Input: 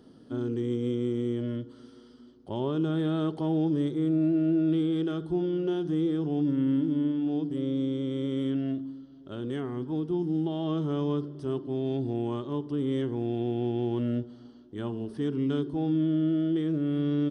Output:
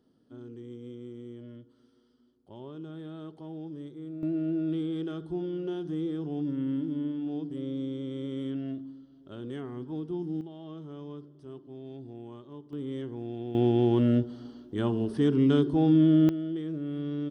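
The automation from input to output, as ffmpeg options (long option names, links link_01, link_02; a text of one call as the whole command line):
ffmpeg -i in.wav -af "asetnsamples=nb_out_samples=441:pad=0,asendcmd='4.23 volume volume -5dB;10.41 volume volume -13.5dB;12.73 volume volume -7dB;13.55 volume volume 5.5dB;16.29 volume volume -6dB',volume=-14dB" out.wav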